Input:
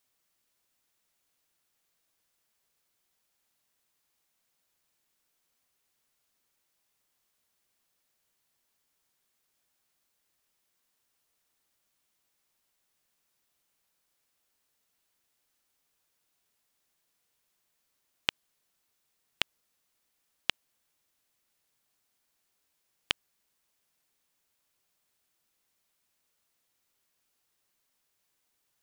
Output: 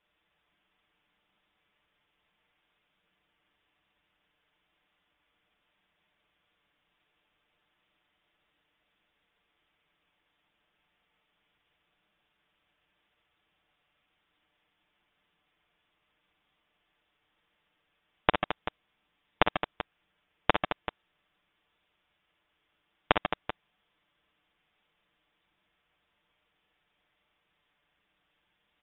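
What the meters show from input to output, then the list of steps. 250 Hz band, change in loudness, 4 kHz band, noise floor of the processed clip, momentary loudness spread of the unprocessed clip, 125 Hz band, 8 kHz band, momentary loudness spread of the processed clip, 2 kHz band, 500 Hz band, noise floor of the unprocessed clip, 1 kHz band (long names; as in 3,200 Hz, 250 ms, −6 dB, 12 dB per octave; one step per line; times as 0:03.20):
+16.5 dB, +3.5 dB, −2.0 dB, −78 dBFS, 0 LU, +14.5 dB, below −20 dB, 14 LU, +6.0 dB, +18.5 dB, −78 dBFS, +17.5 dB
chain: high-pass filter 120 Hz
high-frequency loss of the air 69 metres
comb filter 7.1 ms, depth 65%
on a send: multi-tap delay 49/59/141/143/217/386 ms −15.5/−7/−13/−10/−9.5/−12 dB
on the sum: voice inversion scrambler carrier 3,700 Hz
level +6 dB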